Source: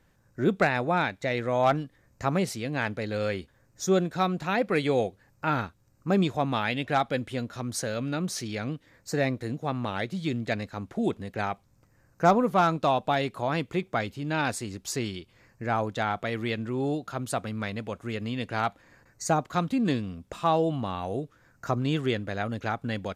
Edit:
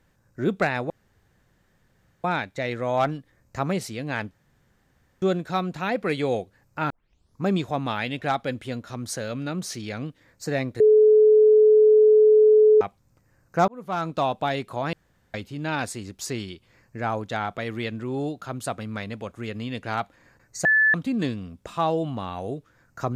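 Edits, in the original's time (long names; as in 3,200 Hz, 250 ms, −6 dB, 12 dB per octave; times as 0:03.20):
0:00.90: splice in room tone 1.34 s
0:02.97–0:03.88: fill with room tone
0:05.56: tape start 0.54 s
0:09.46–0:11.47: beep over 429 Hz −11.5 dBFS
0:12.34–0:12.86: fade in linear
0:13.59–0:14.00: fill with room tone
0:19.31–0:19.60: beep over 1,740 Hz −15 dBFS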